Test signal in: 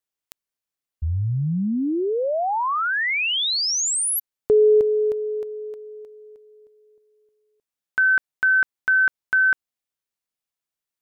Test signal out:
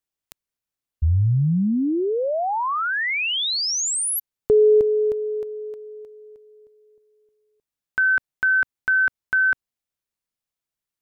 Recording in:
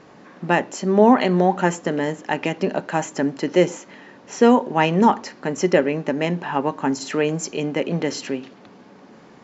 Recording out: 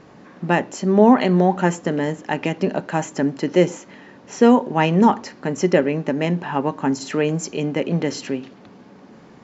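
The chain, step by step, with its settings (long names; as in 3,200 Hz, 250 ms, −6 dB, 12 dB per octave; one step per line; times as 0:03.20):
low-shelf EQ 200 Hz +7.5 dB
level −1 dB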